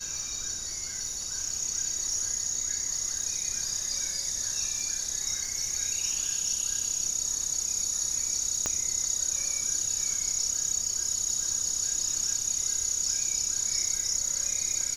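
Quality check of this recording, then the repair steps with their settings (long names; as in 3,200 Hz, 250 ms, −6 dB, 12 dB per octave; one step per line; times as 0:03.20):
surface crackle 33 per second −36 dBFS
0:08.66: click −13 dBFS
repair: click removal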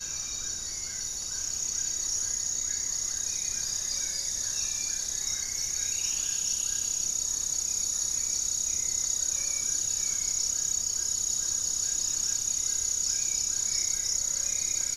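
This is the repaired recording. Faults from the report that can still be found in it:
0:08.66: click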